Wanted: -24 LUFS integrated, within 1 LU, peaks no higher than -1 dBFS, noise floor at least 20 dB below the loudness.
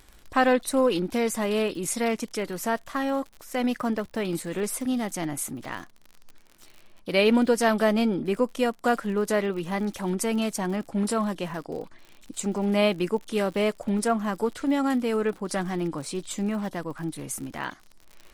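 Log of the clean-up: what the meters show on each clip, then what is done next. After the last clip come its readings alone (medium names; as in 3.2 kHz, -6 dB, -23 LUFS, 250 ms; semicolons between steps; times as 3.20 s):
tick rate 55 per s; loudness -26.5 LUFS; peak level -9.0 dBFS; loudness target -24.0 LUFS
-> de-click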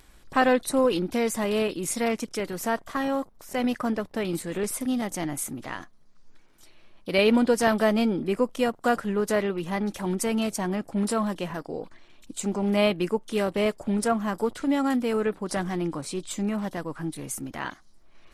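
tick rate 0.055 per s; loudness -26.5 LUFS; peak level -9.0 dBFS; loudness target -24.0 LUFS
-> trim +2.5 dB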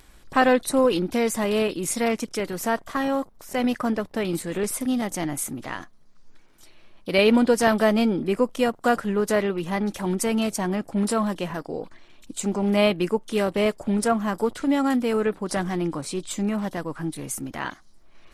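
loudness -24.0 LUFS; peak level -6.5 dBFS; noise floor -51 dBFS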